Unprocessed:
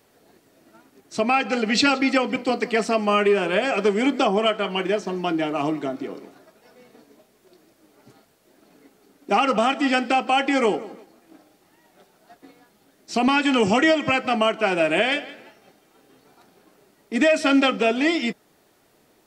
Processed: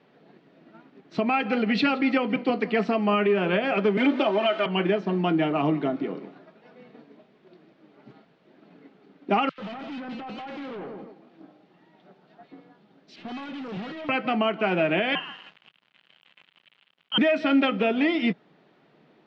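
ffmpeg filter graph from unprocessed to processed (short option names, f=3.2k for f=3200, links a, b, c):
-filter_complex "[0:a]asettb=1/sr,asplit=3[a][b][c];[a]atrim=end=3.974[d];[b]atrim=start=3.97:end=4.66,asetpts=PTS-STARTPTS,afade=t=in:d=0.004:c=qsin,afade=t=out:st=0.686:d=0.004:c=qsin,aeval=exprs='val(0)+0.5*0.0355*sgn(val(0))':c=same,highpass=330,aecho=1:1:3.3:0.83,atrim=end_sample=30429[e];[c]atrim=start=4.656[f];[d][e]acrossfade=d=0.004:c1=hsin:c2=qsin[g];[g][f]acrossfade=d=0.004:c1=qsin:c2=hsin,asettb=1/sr,asplit=3[h][i][j];[h]atrim=end=9.494[k];[i]atrim=start=9.49:end=14.09,asetpts=PTS-STARTPTS,afade=t=in:d=0.004:c=qsin,afade=t=out:st=4.596:d=0.004:c=qsin,aeval=exprs='(tanh(63.1*val(0)+0.2)-tanh(0.2))/63.1':c=same,acrossover=split=2000[l][m];[l]adelay=90[n];[n][m]amix=inputs=2:normalize=0,atrim=end_sample=202860[o];[j]atrim=start=14.086[p];[k][o]acrossfade=d=0.004:c1=hsin:c2=qsin[q];[q][p]acrossfade=d=0.004:c1=qsin:c2=hsin,asettb=1/sr,asplit=3[r][s][t];[r]atrim=end=15.154[u];[s]atrim=start=15.15:end=17.18,asetpts=PTS-STARTPTS,afade=t=in:d=0.004:c=qsin,afade=t=out:st=2.026:d=0.004:c=qsin,lowpass=f=2.9k:t=q:w=0.5098,lowpass=f=2.9k:t=q:w=0.6013,lowpass=f=2.9k:t=q:w=0.9,lowpass=f=2.9k:t=q:w=2.563,afreqshift=-3400,acompressor=mode=upward:threshold=-42dB:ratio=2.5:attack=3.2:release=140:knee=2.83:detection=peak,acrusher=bits=6:mix=0:aa=0.5[v];[t]atrim=start=17.176[w];[u][v]acrossfade=d=0.004:c1=hsin:c2=qsin[x];[x][w]acrossfade=d=0.004:c1=qsin:c2=hsin,lowpass=f=3.6k:w=0.5412,lowpass=f=3.6k:w=1.3066,lowshelf=f=110:t=q:w=3:g=-12,alimiter=limit=-13.5dB:level=0:latency=1:release=270"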